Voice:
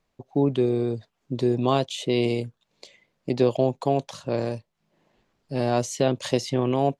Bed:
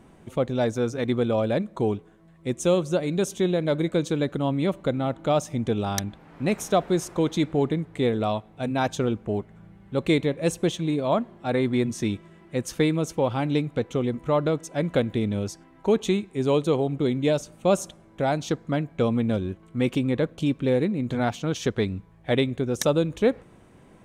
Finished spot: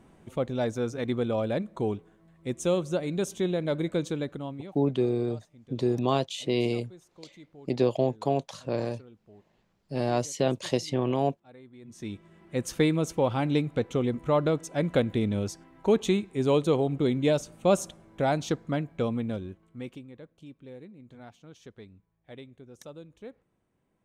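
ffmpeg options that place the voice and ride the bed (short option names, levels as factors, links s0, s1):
-filter_complex "[0:a]adelay=4400,volume=0.668[s0];[1:a]volume=11.2,afade=t=out:st=4.03:d=0.73:silence=0.0749894,afade=t=in:st=11.81:d=0.85:silence=0.0530884,afade=t=out:st=18.38:d=1.69:silence=0.0841395[s1];[s0][s1]amix=inputs=2:normalize=0"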